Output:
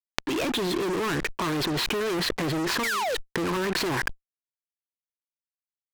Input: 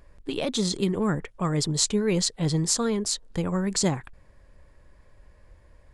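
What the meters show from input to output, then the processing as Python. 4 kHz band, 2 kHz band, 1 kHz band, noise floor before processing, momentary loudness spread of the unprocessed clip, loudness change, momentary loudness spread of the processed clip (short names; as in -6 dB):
+0.5 dB, +10.5 dB, +6.0 dB, -56 dBFS, 5 LU, -1.0 dB, 3 LU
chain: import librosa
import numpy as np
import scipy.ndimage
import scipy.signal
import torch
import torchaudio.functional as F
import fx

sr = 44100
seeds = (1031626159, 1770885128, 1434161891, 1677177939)

y = fx.spec_paint(x, sr, seeds[0], shape='fall', start_s=2.83, length_s=0.32, low_hz=450.0, high_hz=2400.0, level_db=-25.0)
y = fx.cabinet(y, sr, low_hz=190.0, low_slope=12, high_hz=3100.0, hz=(200.0, 340.0, 590.0, 1000.0, 1600.0, 2500.0), db=(-7, 9, -5, 7, 10, 7))
y = fx.fuzz(y, sr, gain_db=41.0, gate_db=-44.0)
y = fx.env_flatten(y, sr, amount_pct=100)
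y = F.gain(torch.from_numpy(y), -13.0).numpy()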